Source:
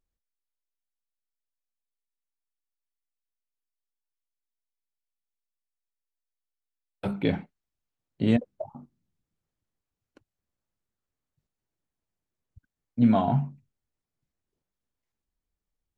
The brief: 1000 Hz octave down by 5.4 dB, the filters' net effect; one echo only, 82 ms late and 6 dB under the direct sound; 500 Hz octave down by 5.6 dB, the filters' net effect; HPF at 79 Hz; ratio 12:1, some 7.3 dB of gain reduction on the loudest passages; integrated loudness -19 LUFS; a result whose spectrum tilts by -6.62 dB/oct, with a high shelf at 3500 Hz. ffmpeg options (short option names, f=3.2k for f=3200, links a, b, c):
-af "highpass=79,equalizer=f=500:t=o:g=-6,equalizer=f=1k:t=o:g=-5,highshelf=f=3.5k:g=5.5,acompressor=threshold=-23dB:ratio=12,aecho=1:1:82:0.501,volume=12.5dB"